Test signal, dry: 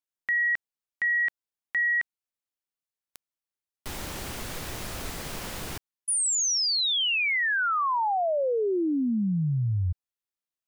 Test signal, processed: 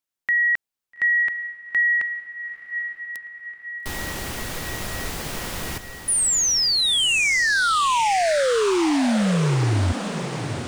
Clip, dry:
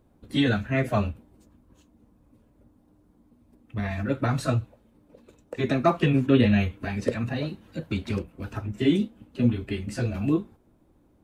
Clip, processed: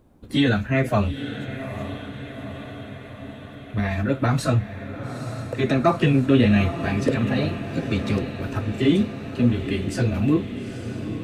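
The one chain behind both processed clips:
in parallel at −1.5 dB: brickwall limiter −19 dBFS
on the sum: feedback delay with all-pass diffusion 876 ms, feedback 65%, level −10 dB

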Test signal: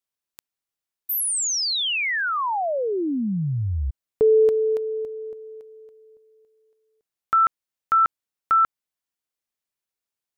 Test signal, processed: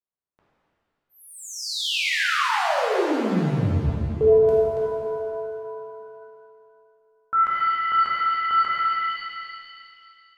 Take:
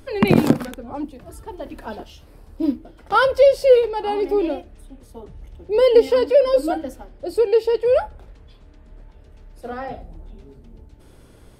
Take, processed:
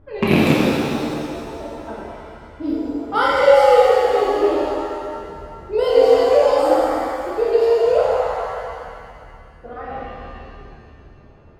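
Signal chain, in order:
loose part that buzzes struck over −15 dBFS, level −6 dBFS
low-pass that shuts in the quiet parts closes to 1,100 Hz, open at −15 dBFS
reverb with rising layers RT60 2.3 s, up +7 semitones, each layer −8 dB, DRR −6.5 dB
level −6 dB

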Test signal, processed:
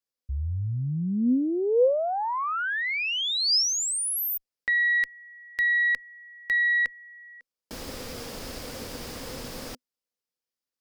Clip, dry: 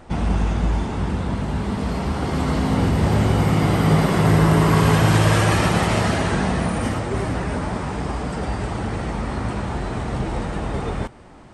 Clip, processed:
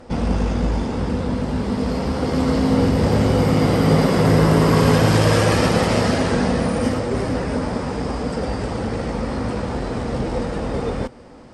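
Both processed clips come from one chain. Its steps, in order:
harmonic generator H 2 −19 dB, 4 −21 dB, 6 −24 dB, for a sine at −3.5 dBFS
thirty-one-band graphic EQ 250 Hz +8 dB, 500 Hz +11 dB, 5,000 Hz +8 dB
level −1 dB

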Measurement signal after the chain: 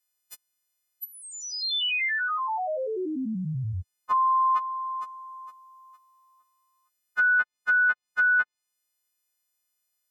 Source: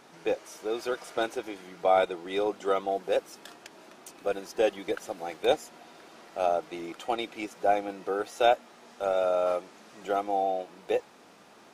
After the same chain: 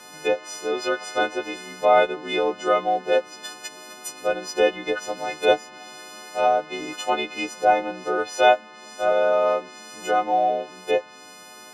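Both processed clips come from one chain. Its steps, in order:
every partial snapped to a pitch grid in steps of 3 semitones
treble cut that deepens with the level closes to 2,800 Hz, closed at −26 dBFS
level +6 dB

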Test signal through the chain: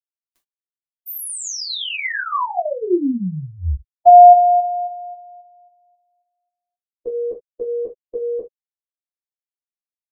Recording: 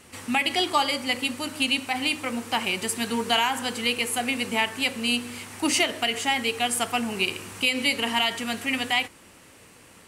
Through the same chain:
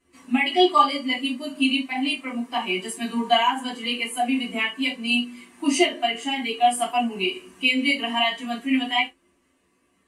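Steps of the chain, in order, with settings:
reverb whose tail is shaped and stops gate 100 ms falling, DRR −5.5 dB
every bin expanded away from the loudest bin 1.5 to 1
level −2.5 dB

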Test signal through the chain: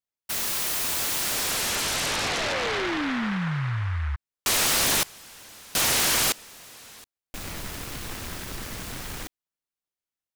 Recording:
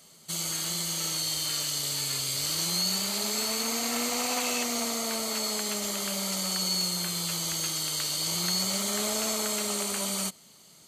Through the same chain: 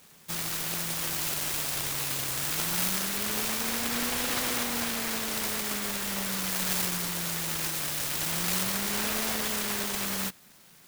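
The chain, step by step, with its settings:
short delay modulated by noise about 1,400 Hz, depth 0.38 ms

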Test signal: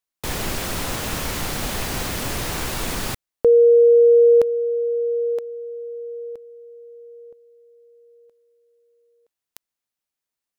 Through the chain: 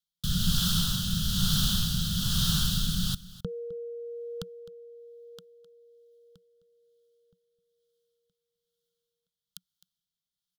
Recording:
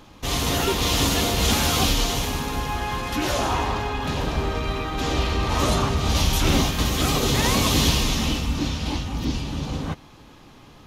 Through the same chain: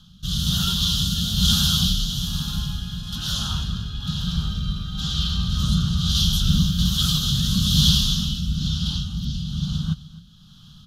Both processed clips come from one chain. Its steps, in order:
drawn EQ curve 120 Hz 0 dB, 180 Hz +9 dB, 320 Hz −28 dB, 580 Hz −26 dB, 1,000 Hz −19 dB, 1,400 Hz −3 dB, 2,200 Hz −30 dB, 3,200 Hz +7 dB, 7,800 Hz −4 dB, 14,000 Hz −1 dB
rotating-speaker cabinet horn 1.1 Hz
single-tap delay 259 ms −18.5 dB
level +2 dB

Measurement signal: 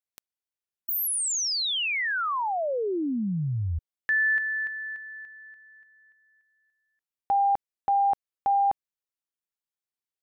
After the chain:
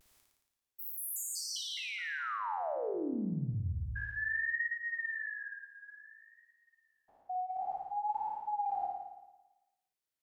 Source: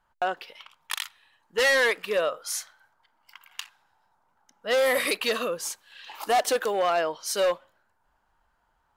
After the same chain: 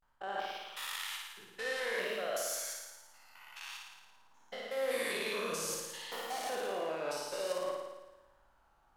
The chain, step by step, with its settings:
spectrum averaged block by block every 200 ms
reversed playback
downward compressor 12 to 1, threshold −36 dBFS
reversed playback
tape wow and flutter 0.64 Hz 130 cents
flutter between parallel walls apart 9.6 metres, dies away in 1.1 s

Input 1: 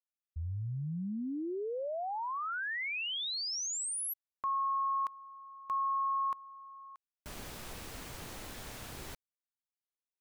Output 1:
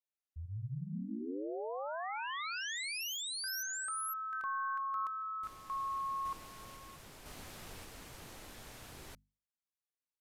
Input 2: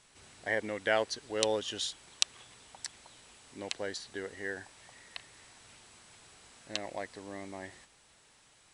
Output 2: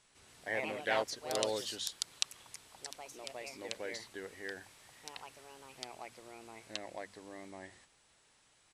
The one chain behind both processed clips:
mains-hum notches 50/100/150/200/250 Hz
delay with pitch and tempo change per echo 150 ms, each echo +3 semitones, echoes 2
downsampling to 32,000 Hz
level −5.5 dB

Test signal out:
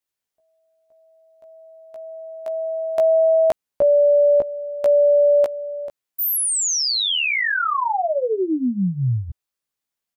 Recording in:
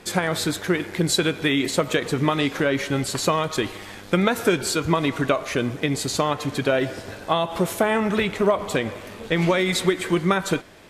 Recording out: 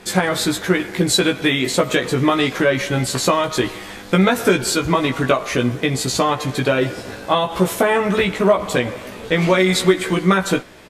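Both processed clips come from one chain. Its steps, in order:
double-tracking delay 16 ms −3 dB
level +3 dB

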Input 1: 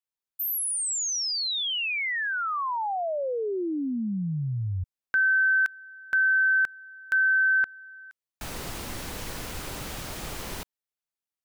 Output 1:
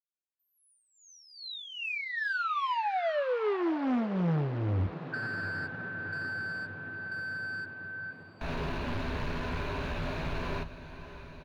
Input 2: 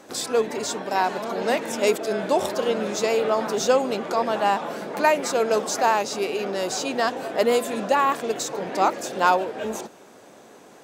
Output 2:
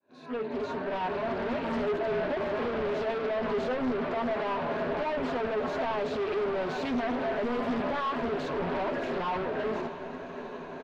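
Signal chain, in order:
fade in at the beginning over 1.82 s
harmonic and percussive parts rebalanced percussive −14 dB
EQ curve with evenly spaced ripples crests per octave 1.5, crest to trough 10 dB
in parallel at −1 dB: downward compressor 6 to 1, threshold −33 dBFS
on the sum: brickwall limiter −16 dBFS
hard clipping −32 dBFS
high-frequency loss of the air 340 metres
double-tracking delay 12 ms −8 dB
feedback delay with all-pass diffusion 686 ms, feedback 73%, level −14.5 dB
highs frequency-modulated by the lows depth 0.4 ms
level +3.5 dB

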